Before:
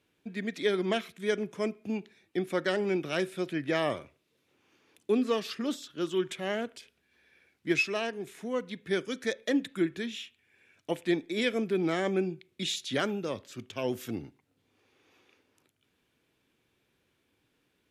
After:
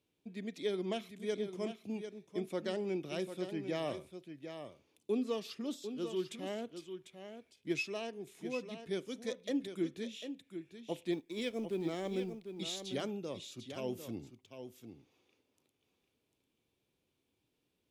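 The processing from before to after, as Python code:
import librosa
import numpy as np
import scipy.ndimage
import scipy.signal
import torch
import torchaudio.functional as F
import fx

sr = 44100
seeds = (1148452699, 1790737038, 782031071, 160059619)

p1 = fx.law_mismatch(x, sr, coded='A', at=(11.12, 12.49))
p2 = fx.peak_eq(p1, sr, hz=1600.0, db=-10.5, octaves=0.91)
p3 = p2 + fx.echo_single(p2, sr, ms=747, db=-9.0, dry=0)
y = p3 * 10.0 ** (-7.0 / 20.0)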